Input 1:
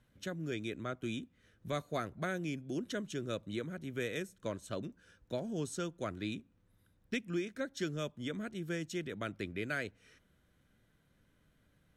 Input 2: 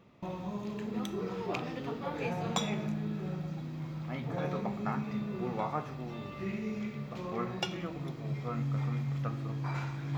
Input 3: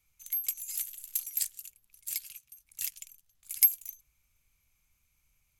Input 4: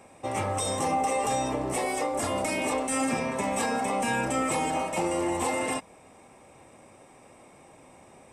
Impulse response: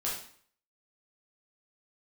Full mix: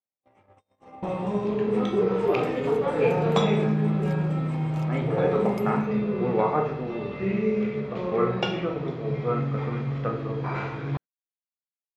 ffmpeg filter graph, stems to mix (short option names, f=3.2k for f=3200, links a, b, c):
-filter_complex "[0:a]highpass=230,volume=-19.5dB[a];[1:a]equalizer=f=440:t=o:w=0.49:g=10,adelay=800,volume=3dB,asplit=2[b][c];[c]volume=-3dB[d];[2:a]adelay=1950,volume=-6dB[e];[3:a]alimiter=limit=-22dB:level=0:latency=1:release=264,volume=-10.5dB,asplit=2[f][g];[g]volume=-15dB[h];[4:a]atrim=start_sample=2205[i];[d][h]amix=inputs=2:normalize=0[j];[j][i]afir=irnorm=-1:irlink=0[k];[a][b][e][f][k]amix=inputs=5:normalize=0,lowpass=3.1k,agate=range=-42dB:threshold=-37dB:ratio=16:detection=peak"